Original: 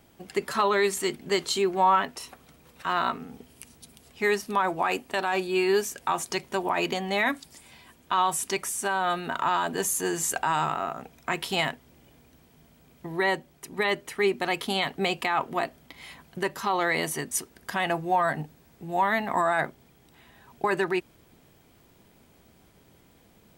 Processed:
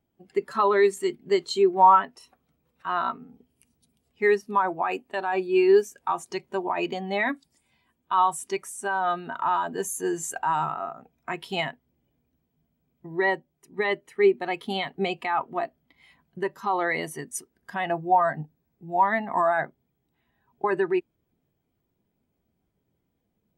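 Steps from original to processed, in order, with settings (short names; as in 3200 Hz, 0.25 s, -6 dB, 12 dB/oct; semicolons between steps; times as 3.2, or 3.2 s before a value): spectral expander 1.5:1; gain +5 dB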